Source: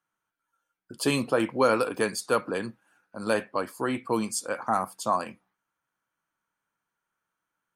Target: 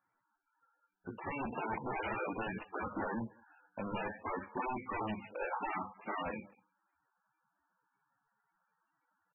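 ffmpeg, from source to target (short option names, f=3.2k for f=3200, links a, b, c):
-filter_complex "[0:a]alimiter=limit=-14.5dB:level=0:latency=1:release=134,aeval=exprs='0.0299*(abs(mod(val(0)/0.0299+3,4)-2)-1)':c=same,acompressor=threshold=-40dB:ratio=2,flanger=delay=9.4:depth=1.2:regen=-62:speed=0.43:shape=triangular,acontrast=60,aresample=8000,aresample=44100,equalizer=f=870:t=o:w=0.31:g=7,bandreject=f=50:t=h:w=6,bandreject=f=100:t=h:w=6,bandreject=f=150:t=h:w=6,bandreject=f=200:t=h:w=6,asplit=2[a][b];[b]adelay=160,highpass=300,lowpass=3.4k,asoftclip=type=hard:threshold=-35dB,volume=-22dB[c];[a][c]amix=inputs=2:normalize=0,atempo=0.83" -ar 24000 -c:a libmp3lame -b:a 8k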